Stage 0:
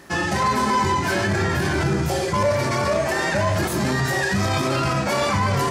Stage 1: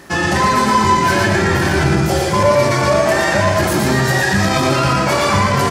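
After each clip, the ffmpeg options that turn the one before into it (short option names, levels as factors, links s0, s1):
-af "aecho=1:1:116|232|348|464:0.631|0.196|0.0606|0.0188,volume=1.88"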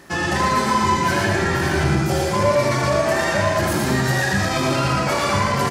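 -af "aecho=1:1:78:0.473,volume=0.531"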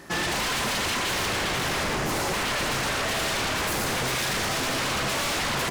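-af "aeval=exprs='0.0794*(abs(mod(val(0)/0.0794+3,4)-2)-1)':c=same"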